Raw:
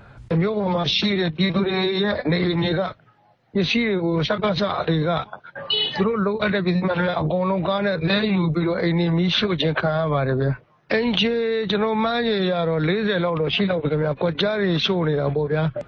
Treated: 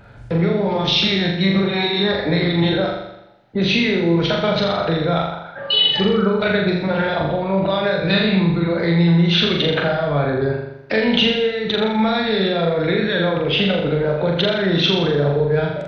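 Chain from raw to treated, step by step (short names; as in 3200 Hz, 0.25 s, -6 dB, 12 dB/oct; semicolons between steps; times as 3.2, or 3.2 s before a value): notch 1100 Hz, Q 7.4; flutter echo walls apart 7.1 m, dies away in 0.86 s; dynamic EQ 3100 Hz, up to +3 dB, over -31 dBFS, Q 2.3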